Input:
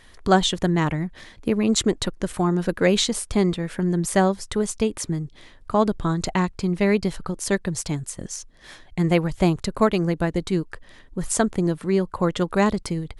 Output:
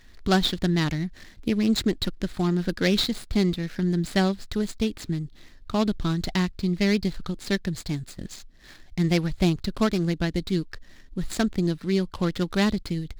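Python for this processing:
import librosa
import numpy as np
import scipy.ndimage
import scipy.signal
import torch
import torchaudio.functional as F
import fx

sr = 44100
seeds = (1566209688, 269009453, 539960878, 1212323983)

y = scipy.signal.medfilt(x, 15)
y = fx.graphic_eq_10(y, sr, hz=(125, 500, 1000, 4000), db=(-4, -8, -9, 9))
y = y * librosa.db_to_amplitude(1.5)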